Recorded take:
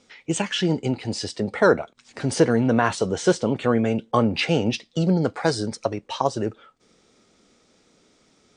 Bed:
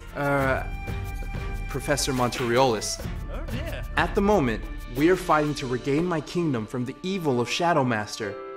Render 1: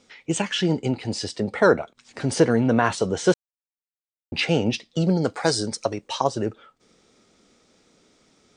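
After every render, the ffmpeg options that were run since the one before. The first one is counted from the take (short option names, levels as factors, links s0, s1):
-filter_complex "[0:a]asettb=1/sr,asplit=3[s0][s1][s2];[s0]atrim=end=5.104[s3];[s1]atrim=start=5.1:end=6.24,asetpts=PTS-STARTPTS,afade=t=in:d=0.004:c=qsin,afade=t=out:st=1.136:d=0.004:c=qsin,bass=f=250:g=-2,treble=f=4000:g=7[s4];[s2]atrim=start=6.236[s5];[s3][s4]acrossfade=d=0.004:c1=hsin:c2=qsin[s6];[s6][s5]acrossfade=d=0.004:c1=qsin:c2=hsin,asplit=3[s7][s8][s9];[s7]atrim=end=3.34,asetpts=PTS-STARTPTS,afade=t=out:st=3.336:d=0.004:c=hsin[s10];[s8]atrim=start=3.34:end=4.32,asetpts=PTS-STARTPTS,volume=0[s11];[s9]atrim=start=4.32,asetpts=PTS-STARTPTS,afade=t=in:d=0.004:c=hsin[s12];[s10][s11][s12]concat=n=3:v=0:a=1"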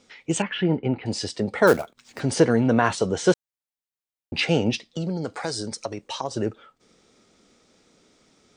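-filter_complex "[0:a]asettb=1/sr,asplit=3[s0][s1][s2];[s0]atrim=end=0.424[s3];[s1]atrim=start=0.42:end=1.06,asetpts=PTS-STARTPTS,afade=t=in:d=0.004:c=qsin,afade=t=out:st=0.636:d=0.004:c=qsin,lowpass=f=2700:w=0.5412,lowpass=f=2700:w=1.3066[s4];[s2]atrim=start=1.056[s5];[s3][s4]acrossfade=d=0.004:c1=hsin:c2=qsin[s6];[s6][s5]acrossfade=d=0.004:c1=qsin:c2=hsin,asettb=1/sr,asplit=3[s7][s8][s9];[s7]atrim=end=1.674[s10];[s8]atrim=start=1.67:end=2.2,asetpts=PTS-STARTPTS,afade=t=in:d=0.004:c=qsin,afade=t=out:st=0.526:d=0.004:c=qsin,acrusher=bits=4:mode=log:mix=0:aa=0.000001[s11];[s9]atrim=start=2.196[s12];[s10][s11]acrossfade=d=0.004:c1=hsin:c2=qsin[s13];[s13][s12]acrossfade=d=0.004:c1=qsin:c2=hsin,asettb=1/sr,asplit=3[s14][s15][s16];[s14]atrim=end=4.854[s17];[s15]atrim=start=4.85:end=6.31,asetpts=PTS-STARTPTS,afade=t=in:d=0.004:c=qsin,afade=t=out:st=1.456:d=0.004:c=qsin,acompressor=threshold=0.0355:ratio=2:attack=3.2:release=140:knee=1:detection=peak[s18];[s16]atrim=start=6.306[s19];[s17][s18]acrossfade=d=0.004:c1=hsin:c2=qsin[s20];[s20][s19]acrossfade=d=0.004:c1=qsin:c2=hsin"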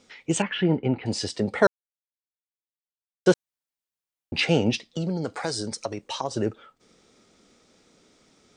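-filter_complex "[0:a]asplit=3[s0][s1][s2];[s0]atrim=end=1.67,asetpts=PTS-STARTPTS,afade=t=out:st=1.666:d=0.004:c=hsin[s3];[s1]atrim=start=1.67:end=3.26,asetpts=PTS-STARTPTS,volume=0[s4];[s2]atrim=start=3.26,asetpts=PTS-STARTPTS,afade=t=in:d=0.004:c=hsin[s5];[s3][s4][s5]concat=n=3:v=0:a=1"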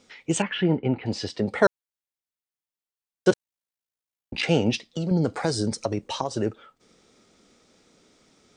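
-filter_complex "[0:a]asettb=1/sr,asplit=3[s0][s1][s2];[s0]atrim=end=0.734[s3];[s1]atrim=start=0.73:end=1.47,asetpts=PTS-STARTPTS,afade=t=in:d=0.004:c=qsin,afade=t=out:st=0.736:d=0.004:c=qsin,lowpass=4700[s4];[s2]atrim=start=1.466[s5];[s3][s4]acrossfade=d=0.004:c1=hsin:c2=qsin[s6];[s6][s5]acrossfade=d=0.004:c1=qsin:c2=hsin,asplit=3[s7][s8][s9];[s7]afade=t=out:st=3.3:d=0.02[s10];[s8]aeval=exprs='val(0)*sin(2*PI*28*n/s)':c=same,afade=t=in:st=3.3:d=0.02,afade=t=out:st=4.42:d=0.02[s11];[s9]afade=t=in:st=4.42:d=0.02[s12];[s10][s11][s12]amix=inputs=3:normalize=0,asettb=1/sr,asplit=3[s13][s14][s15];[s13]atrim=end=5.114[s16];[s14]atrim=start=5.11:end=6.24,asetpts=PTS-STARTPTS,afade=t=in:d=0.004:c=qsin,afade=t=out:st=1.126:d=0.004:c=qsin,lowshelf=f=460:g=9[s17];[s15]atrim=start=6.236[s18];[s16][s17]acrossfade=d=0.004:c1=hsin:c2=qsin[s19];[s19][s18]acrossfade=d=0.004:c1=qsin:c2=hsin"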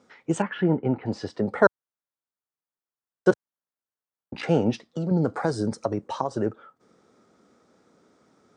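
-af "highpass=96,highshelf=f=1900:t=q:w=1.5:g=-9"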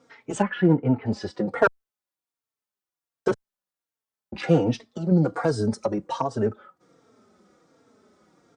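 -filter_complex "[0:a]asplit=2[s0][s1];[s1]volume=5.62,asoftclip=hard,volume=0.178,volume=0.631[s2];[s0][s2]amix=inputs=2:normalize=0,asplit=2[s3][s4];[s4]adelay=3.8,afreqshift=-1.3[s5];[s3][s5]amix=inputs=2:normalize=1"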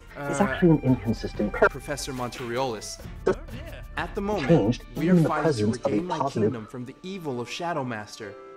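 -filter_complex "[1:a]volume=0.447[s0];[0:a][s0]amix=inputs=2:normalize=0"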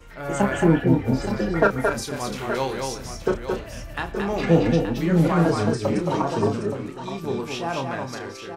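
-filter_complex "[0:a]asplit=2[s0][s1];[s1]adelay=30,volume=0.447[s2];[s0][s2]amix=inputs=2:normalize=0,asplit=2[s3][s4];[s4]aecho=0:1:222|873:0.631|0.335[s5];[s3][s5]amix=inputs=2:normalize=0"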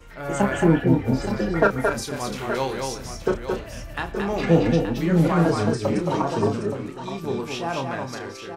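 -af anull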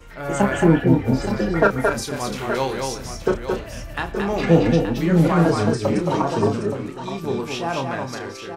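-af "volume=1.33,alimiter=limit=0.708:level=0:latency=1"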